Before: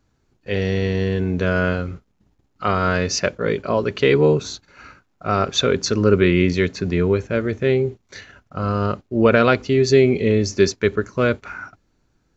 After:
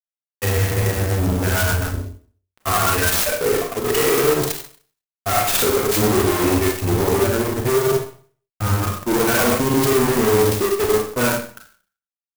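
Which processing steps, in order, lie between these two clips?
per-bin expansion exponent 2; LPF 4700 Hz 12 dB/oct; low shelf 85 Hz -4 dB; comb 2.7 ms, depth 62%; grains; fuzz box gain 39 dB, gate -44 dBFS; flange 0.99 Hz, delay 4.9 ms, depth 3.4 ms, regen -87%; Schroeder reverb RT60 0.45 s, combs from 29 ms, DRR 1.5 dB; clock jitter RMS 0.072 ms

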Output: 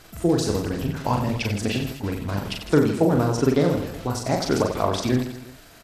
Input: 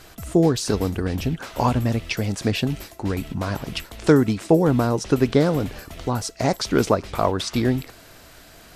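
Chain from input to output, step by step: tempo 1.5×; reverse bouncing-ball echo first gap 40 ms, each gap 1.3×, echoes 5; gain -3 dB

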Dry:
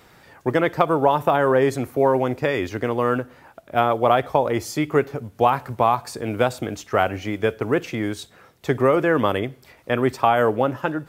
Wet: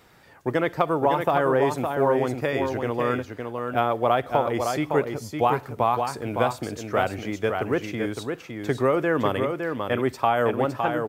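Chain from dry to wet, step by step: echo 0.561 s -5.5 dB; gain -4 dB

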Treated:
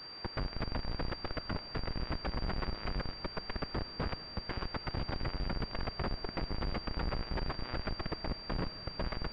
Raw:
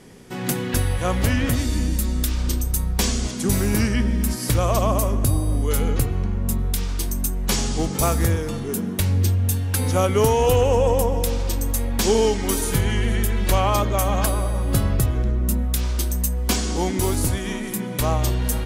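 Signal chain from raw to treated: rattling part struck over -18 dBFS, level -16 dBFS; spectral gate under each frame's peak -25 dB weak; reverb removal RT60 2 s; HPF 910 Hz 12 dB/oct; in parallel at +1 dB: compressor 12:1, threshold -34 dBFS, peak gain reduction 10.5 dB; on the sum: Schmitt trigger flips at -21.5 dBFS; requantised 8-bit, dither triangular; speed mistake 7.5 ips tape played at 15 ips; reverb RT60 2.6 s, pre-delay 65 ms, DRR 15 dB; pulse-width modulation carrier 4700 Hz

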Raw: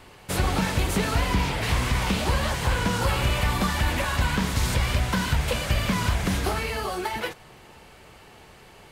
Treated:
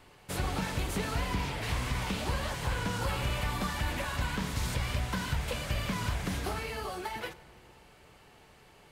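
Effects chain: shoebox room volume 2700 m³, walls mixed, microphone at 0.36 m; gain -8.5 dB

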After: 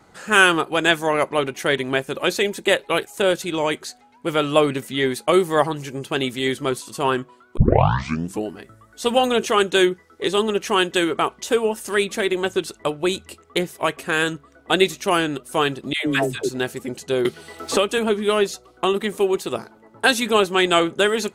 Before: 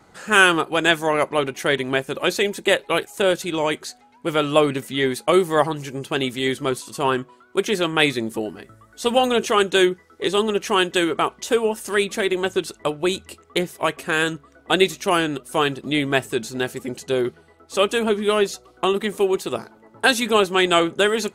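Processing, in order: 7.57 tape start 0.86 s; 15.93–16.49 dispersion lows, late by 0.143 s, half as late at 610 Hz; 17.25–17.98 three-band squash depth 100%

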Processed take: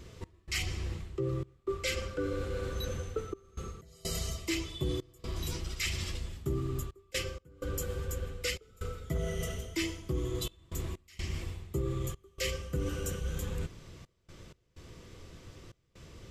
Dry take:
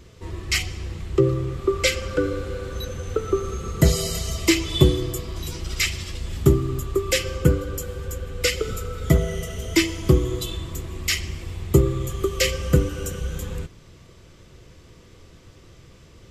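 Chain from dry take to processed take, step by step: reverse; compressor 6:1, threshold -29 dBFS, peak gain reduction 18.5 dB; reverse; step gate "x.xxxx.xxxxxxx." 63 bpm -24 dB; gain -2 dB

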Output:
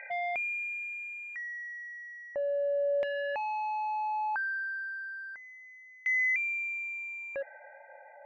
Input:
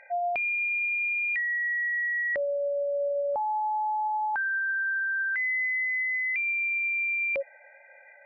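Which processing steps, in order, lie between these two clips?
hard clip -36 dBFS, distortion -9 dB; LFO low-pass saw down 0.33 Hz 640–2300 Hz; gain +2 dB

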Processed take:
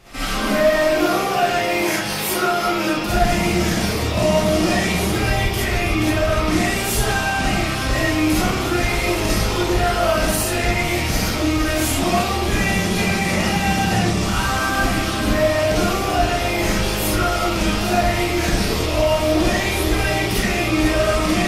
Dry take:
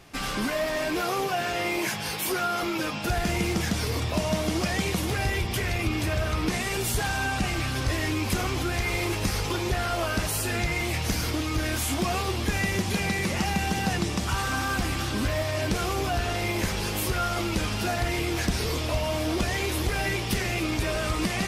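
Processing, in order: pre-echo 83 ms -18 dB; digital reverb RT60 0.69 s, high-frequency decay 0.4×, pre-delay 10 ms, DRR -8 dB

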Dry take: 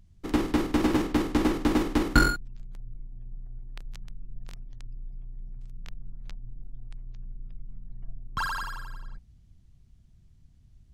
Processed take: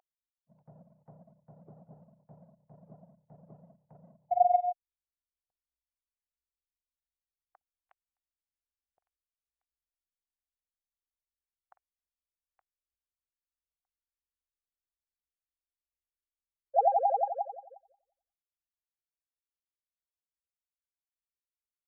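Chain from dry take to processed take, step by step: formant sharpening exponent 3; speed mistake 15 ips tape played at 7.5 ips; resonant high-pass 730 Hz, resonance Q 5.2; gain -4.5 dB

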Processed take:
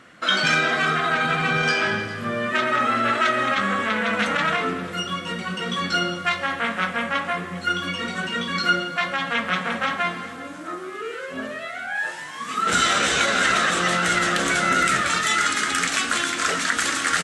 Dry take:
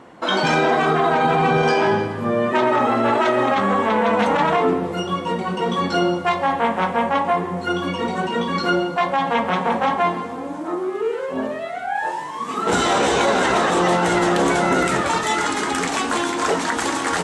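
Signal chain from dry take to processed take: EQ curve 210 Hz 0 dB, 400 Hz -7 dB, 610 Hz -2 dB, 920 Hz -11 dB, 1300 Hz +8 dB; echo 0.401 s -17.5 dB; gain -5 dB

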